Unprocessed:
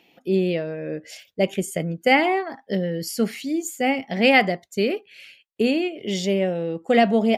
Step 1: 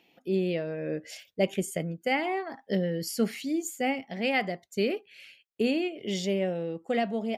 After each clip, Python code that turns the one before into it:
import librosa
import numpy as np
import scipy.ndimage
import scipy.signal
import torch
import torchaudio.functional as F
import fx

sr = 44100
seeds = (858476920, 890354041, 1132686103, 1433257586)

y = fx.rider(x, sr, range_db=5, speed_s=0.5)
y = y * 10.0 ** (-7.5 / 20.0)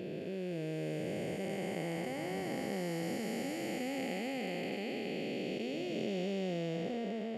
y = fx.spec_blur(x, sr, span_ms=1490.0)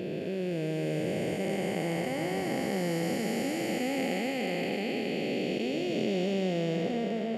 y = fx.echo_split(x, sr, split_hz=530.0, low_ms=326, high_ms=121, feedback_pct=52, wet_db=-12.5)
y = y * 10.0 ** (6.5 / 20.0)